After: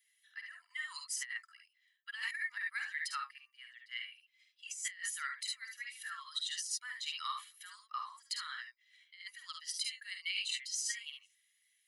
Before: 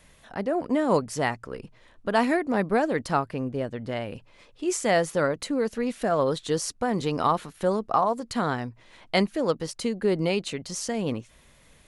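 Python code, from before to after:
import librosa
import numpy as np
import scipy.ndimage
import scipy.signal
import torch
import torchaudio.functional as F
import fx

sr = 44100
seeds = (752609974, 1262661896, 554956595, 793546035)

y = fx.bin_expand(x, sr, power=1.5)
y = scipy.signal.sosfilt(scipy.signal.butter(8, 1500.0, 'highpass', fs=sr, output='sos'), y)
y = y + 0.73 * np.pad(y, (int(1.0 * sr / 1000.0), 0))[:len(y)]
y = fx.room_early_taps(y, sr, ms=(50, 62, 73), db=(-7.0, -10.0, -7.5))
y = fx.over_compress(y, sr, threshold_db=-35.0, ratio=-0.5)
y = y * librosa.db_to_amplitude(-2.5)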